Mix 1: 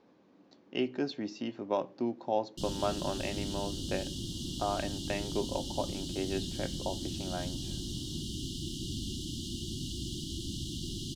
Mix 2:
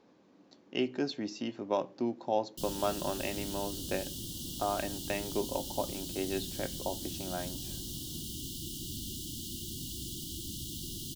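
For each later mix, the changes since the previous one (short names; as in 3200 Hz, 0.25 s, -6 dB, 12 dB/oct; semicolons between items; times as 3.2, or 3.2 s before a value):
background -5.0 dB; master: remove air absorption 79 m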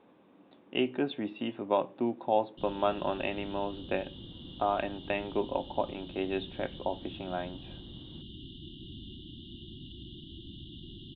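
speech +4.5 dB; master: add rippled Chebyshev low-pass 3700 Hz, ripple 3 dB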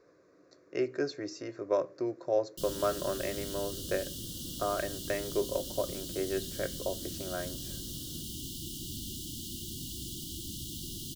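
speech: add fixed phaser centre 840 Hz, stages 6; master: remove rippled Chebyshev low-pass 3700 Hz, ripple 3 dB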